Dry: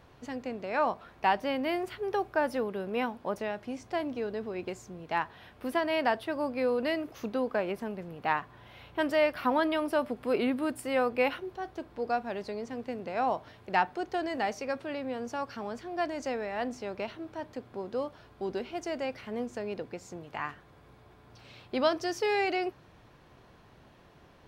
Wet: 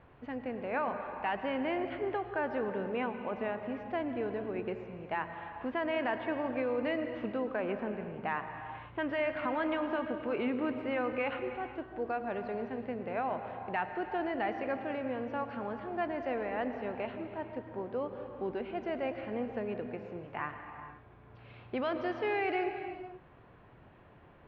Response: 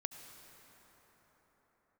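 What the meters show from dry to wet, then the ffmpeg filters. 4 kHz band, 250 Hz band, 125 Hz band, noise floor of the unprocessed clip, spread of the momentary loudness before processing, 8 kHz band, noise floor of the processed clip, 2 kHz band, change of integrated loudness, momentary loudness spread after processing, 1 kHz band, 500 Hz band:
−8.5 dB, −2.0 dB, 0.0 dB, −57 dBFS, 11 LU, below −30 dB, −57 dBFS, −3.0 dB, −3.5 dB, 8 LU, −4.0 dB, −3.0 dB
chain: -filter_complex "[0:a]acrossover=split=1500[link_01][link_02];[link_01]alimiter=level_in=1.5dB:limit=-24dB:level=0:latency=1,volume=-1.5dB[link_03];[link_02]asoftclip=type=tanh:threshold=-28.5dB[link_04];[link_03][link_04]amix=inputs=2:normalize=0,lowpass=frequency=2700:width=0.5412,lowpass=frequency=2700:width=1.3066[link_05];[1:a]atrim=start_sample=2205,afade=type=out:start_time=0.42:duration=0.01,atrim=end_sample=18963,asetrate=32193,aresample=44100[link_06];[link_05][link_06]afir=irnorm=-1:irlink=0"

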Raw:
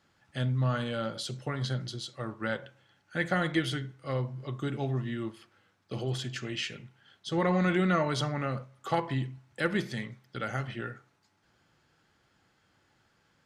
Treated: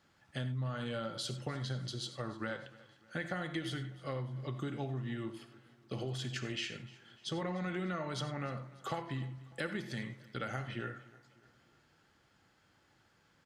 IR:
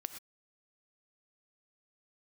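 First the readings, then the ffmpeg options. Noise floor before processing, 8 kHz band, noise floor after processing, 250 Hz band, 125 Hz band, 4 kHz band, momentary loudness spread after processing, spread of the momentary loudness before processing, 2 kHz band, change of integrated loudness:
−70 dBFS, −4.0 dB, −70 dBFS, −8.0 dB, −7.0 dB, −4.5 dB, 8 LU, 12 LU, −7.5 dB, −7.5 dB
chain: -filter_complex "[0:a]acompressor=threshold=-34dB:ratio=6,aecho=1:1:299|598|897|1196:0.0891|0.0446|0.0223|0.0111[link_01];[1:a]atrim=start_sample=2205,afade=type=out:start_time=0.15:duration=0.01,atrim=end_sample=7056[link_02];[link_01][link_02]afir=irnorm=-1:irlink=0,volume=1.5dB"

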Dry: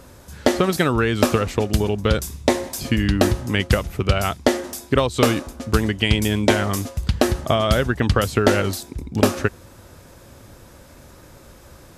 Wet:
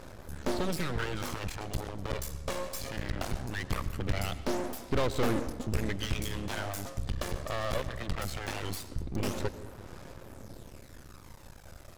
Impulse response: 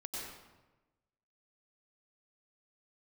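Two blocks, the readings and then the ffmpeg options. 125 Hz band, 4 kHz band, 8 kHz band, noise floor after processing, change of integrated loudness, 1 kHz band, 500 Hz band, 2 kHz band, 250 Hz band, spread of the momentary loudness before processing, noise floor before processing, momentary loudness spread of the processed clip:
−13.5 dB, −14.0 dB, −12.0 dB, −50 dBFS, −14.5 dB, −13.5 dB, −15.5 dB, −14.0 dB, −15.5 dB, 6 LU, −46 dBFS, 17 LU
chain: -filter_complex "[0:a]aeval=exprs='(tanh(7.08*val(0)+0.75)-tanh(0.75))/7.08':channel_layout=same,aphaser=in_gain=1:out_gain=1:delay=1.8:decay=0.49:speed=0.2:type=sinusoidal,aeval=exprs='max(val(0),0)':channel_layout=same,asplit=2[link_01][link_02];[1:a]atrim=start_sample=2205,lowpass=7700[link_03];[link_02][link_03]afir=irnorm=-1:irlink=0,volume=-11dB[link_04];[link_01][link_04]amix=inputs=2:normalize=0"

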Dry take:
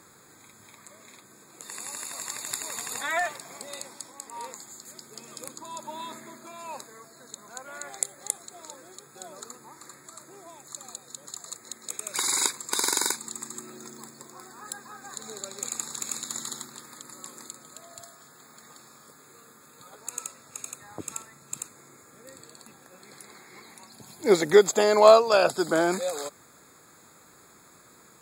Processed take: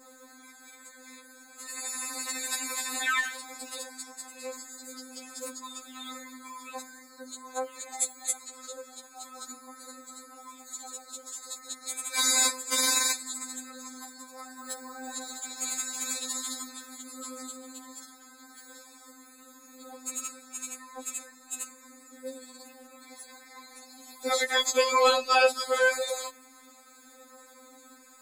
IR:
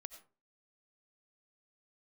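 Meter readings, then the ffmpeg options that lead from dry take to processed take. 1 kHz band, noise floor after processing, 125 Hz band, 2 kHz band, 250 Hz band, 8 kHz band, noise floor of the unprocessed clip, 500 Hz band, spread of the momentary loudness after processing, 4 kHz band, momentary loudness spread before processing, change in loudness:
−2.0 dB, −54 dBFS, below −30 dB, +3.0 dB, −8.0 dB, +1.0 dB, −55 dBFS, −7.5 dB, 24 LU, +3.0 dB, 22 LU, −3.0 dB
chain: -filter_complex "[0:a]acrossover=split=350|480|2000[link_01][link_02][link_03][link_04];[link_01]acompressor=threshold=-48dB:ratio=6[link_05];[link_02]aphaser=in_gain=1:out_gain=1:delay=3.9:decay=0.78:speed=0.2:type=sinusoidal[link_06];[link_05][link_06][link_03][link_04]amix=inputs=4:normalize=0,adynamicequalizer=threshold=0.00562:dfrequency=2500:dqfactor=1.3:tfrequency=2500:tqfactor=1.3:attack=5:release=100:ratio=0.375:range=2:mode=boostabove:tftype=bell,afftfilt=real='re*3.46*eq(mod(b,12),0)':imag='im*3.46*eq(mod(b,12),0)':win_size=2048:overlap=0.75,volume=3dB"

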